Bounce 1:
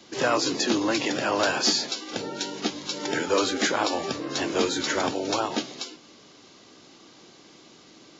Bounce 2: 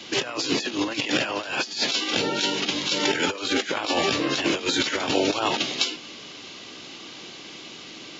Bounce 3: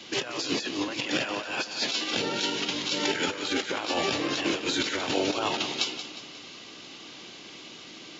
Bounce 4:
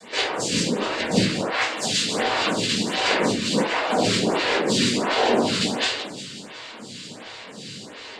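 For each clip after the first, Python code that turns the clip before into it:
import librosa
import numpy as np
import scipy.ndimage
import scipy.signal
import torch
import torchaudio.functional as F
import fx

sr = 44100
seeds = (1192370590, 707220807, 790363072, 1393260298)

y1 = fx.peak_eq(x, sr, hz=2800.0, db=10.0, octaves=1.1)
y1 = fx.over_compress(y1, sr, threshold_db=-27.0, ratio=-0.5)
y1 = y1 * 10.0 ** (3.0 / 20.0)
y2 = fx.echo_feedback(y1, sr, ms=179, feedback_pct=49, wet_db=-10.5)
y2 = y2 * 10.0 ** (-4.5 / 20.0)
y3 = fx.noise_vocoder(y2, sr, seeds[0], bands=8)
y3 = fx.room_shoebox(y3, sr, seeds[1], volume_m3=470.0, walls='furnished', distance_m=5.8)
y3 = fx.stagger_phaser(y3, sr, hz=1.4)
y3 = y3 * 10.0 ** (2.0 / 20.0)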